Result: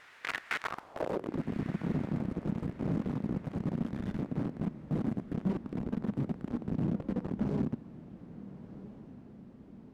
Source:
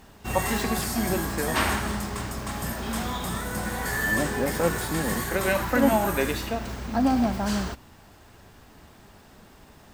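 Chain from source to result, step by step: full-wave rectifier; high shelf 8500 Hz +11.5 dB; compressor 10:1, threshold -35 dBFS, peak gain reduction 20 dB; RIAA curve playback; wrapped overs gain 20 dB; added noise pink -45 dBFS; band-pass sweep 1800 Hz -> 210 Hz, 0.57–1.47; on a send: diffused feedback echo 1.347 s, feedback 45%, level -16 dB

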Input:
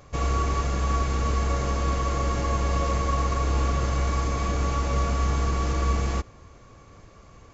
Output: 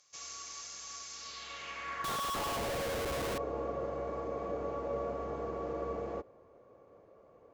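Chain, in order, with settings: band-pass sweep 5800 Hz -> 520 Hz, 1.12–2.84; 2.04–3.38 Schmitt trigger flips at -43 dBFS

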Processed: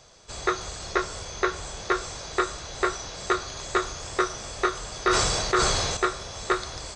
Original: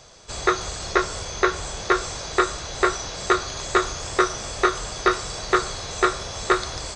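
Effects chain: 4.92–5.97 sustainer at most 24 dB/s; gain -5 dB

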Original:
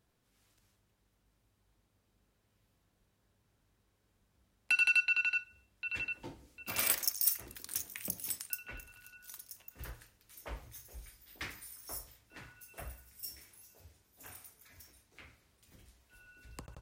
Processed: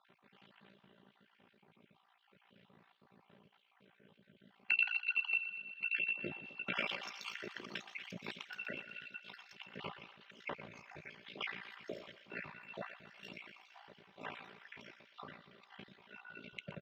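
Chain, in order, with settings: random spectral dropouts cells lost 47%; elliptic band-pass 160–3200 Hz, stop band 50 dB; comb 5.1 ms, depth 62%; compressor 2:1, threshold -58 dBFS, peak gain reduction 17 dB; AM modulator 57 Hz, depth 65%; thinning echo 0.121 s, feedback 72%, high-pass 650 Hz, level -12.5 dB; gain +17 dB

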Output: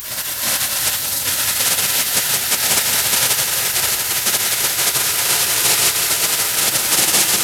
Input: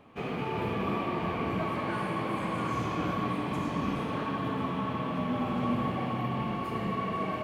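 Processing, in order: delta modulation 64 kbps, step -29.5 dBFS; bell 350 Hz +9.5 dB 2.8 oct; spectral delete 0.96–1.26, 980–3700 Hz; pre-emphasis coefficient 0.97; spectral gate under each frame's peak -15 dB weak; on a send: reverse echo 0.355 s -10 dB; on the sum: maximiser +31 dB; lo-fi delay 0.173 s, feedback 80%, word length 6-bit, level -8 dB; gain -1.5 dB

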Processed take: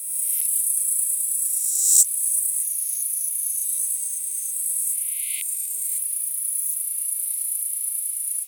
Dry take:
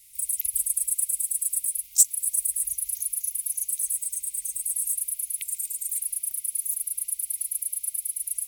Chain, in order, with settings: spectral swells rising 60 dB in 1.23 s; elliptic high-pass 850 Hz, stop band 40 dB

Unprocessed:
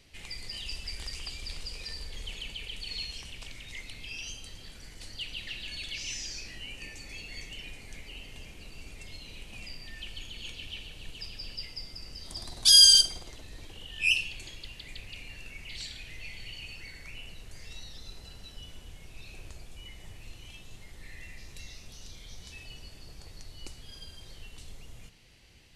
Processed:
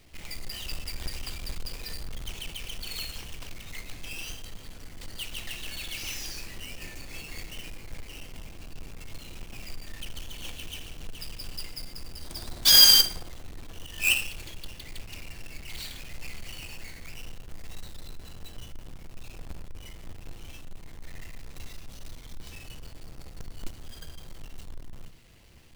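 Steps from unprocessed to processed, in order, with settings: half-waves squared off; on a send: reverb RT60 0.55 s, pre-delay 3 ms, DRR 13 dB; on the sum: gain -2 dB

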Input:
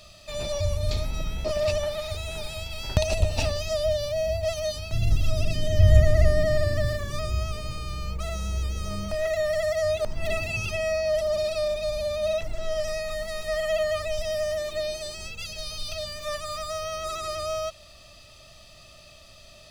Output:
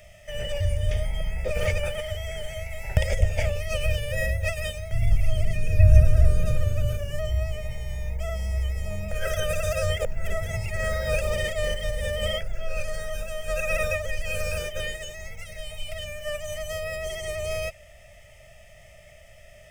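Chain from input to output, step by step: formant shift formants -3 st; fixed phaser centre 1100 Hz, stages 6; gain +2.5 dB

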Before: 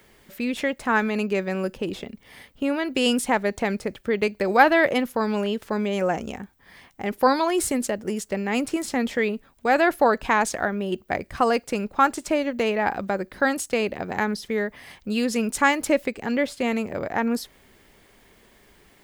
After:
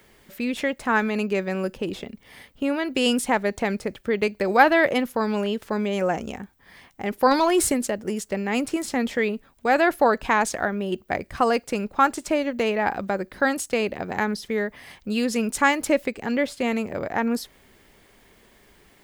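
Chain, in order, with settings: 7.31–7.74 sample leveller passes 1

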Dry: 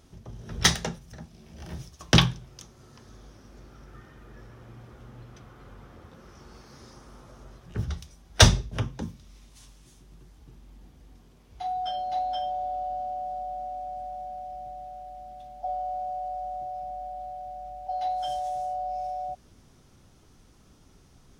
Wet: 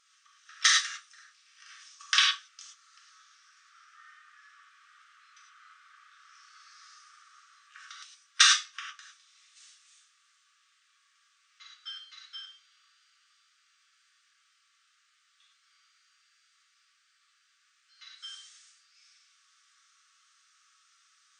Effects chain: non-linear reverb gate 0.13 s flat, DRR -3 dB; FFT band-pass 1100–9200 Hz; gain -3.5 dB

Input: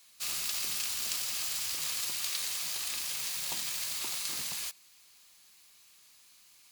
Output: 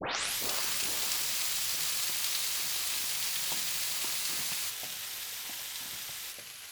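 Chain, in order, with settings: tape start at the beginning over 0.49 s; echoes that change speed 0.399 s, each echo -4 st, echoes 2, each echo -6 dB; gain +1 dB

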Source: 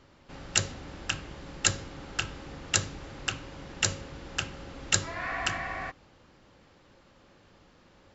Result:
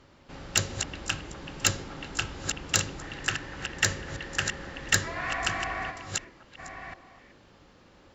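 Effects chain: reverse delay 0.694 s, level -8 dB; 3.02–5.08 bell 1800 Hz +12.5 dB 0.25 oct; added harmonics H 2 -13 dB, 5 -24 dB, 8 -40 dB, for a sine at -4.5 dBFS; on a send: delay with a stepping band-pass 0.126 s, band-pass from 340 Hz, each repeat 1.4 oct, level -7.5 dB; on the sum: gain -1 dB

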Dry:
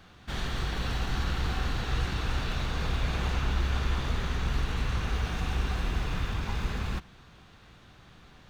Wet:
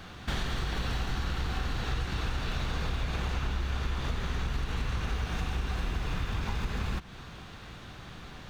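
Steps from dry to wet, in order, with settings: compressor 6:1, threshold -37 dBFS, peak gain reduction 13.5 dB; gain +8.5 dB

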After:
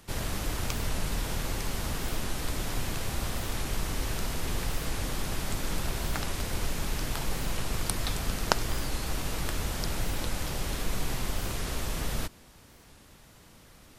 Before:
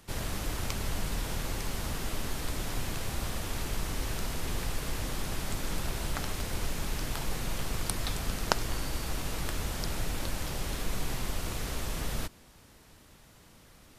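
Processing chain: record warp 45 rpm, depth 160 cents; gain +2 dB

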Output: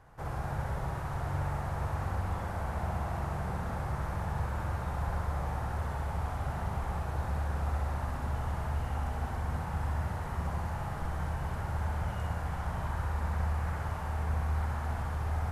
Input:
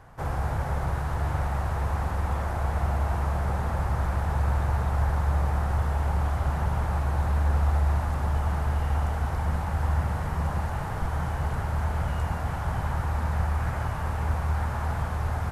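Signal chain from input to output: flutter echo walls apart 11 m, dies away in 0.83 s; gain -7.5 dB

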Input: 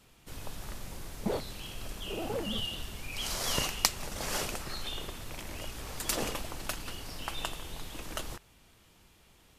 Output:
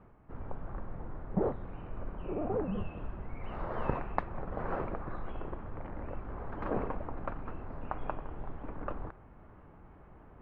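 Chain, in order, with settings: LPF 1500 Hz 24 dB/oct; reverse; upward compressor, threshold -47 dBFS; reverse; varispeed -8%; gain +2 dB

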